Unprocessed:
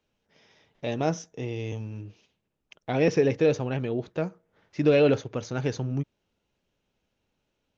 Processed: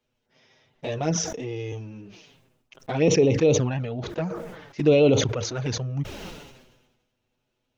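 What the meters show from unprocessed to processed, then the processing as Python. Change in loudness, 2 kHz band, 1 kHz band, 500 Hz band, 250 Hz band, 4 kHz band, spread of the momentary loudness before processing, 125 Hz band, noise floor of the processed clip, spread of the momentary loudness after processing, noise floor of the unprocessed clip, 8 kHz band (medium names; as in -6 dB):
+3.0 dB, +0.5 dB, +0.5 dB, +2.5 dB, +2.5 dB, +8.0 dB, 17 LU, +4.0 dB, -77 dBFS, 19 LU, -79 dBFS, no reading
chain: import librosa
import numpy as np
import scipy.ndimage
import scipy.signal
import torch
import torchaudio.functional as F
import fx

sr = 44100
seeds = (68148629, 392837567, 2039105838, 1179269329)

y = fx.env_flanger(x, sr, rest_ms=8.1, full_db=-19.0)
y = fx.sustainer(y, sr, db_per_s=48.0)
y = y * 10.0 ** (3.0 / 20.0)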